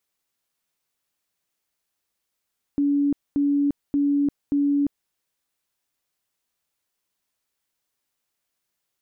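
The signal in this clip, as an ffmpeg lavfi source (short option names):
-f lavfi -i "aevalsrc='0.133*sin(2*PI*285*mod(t,0.58))*lt(mod(t,0.58),99/285)':d=2.32:s=44100"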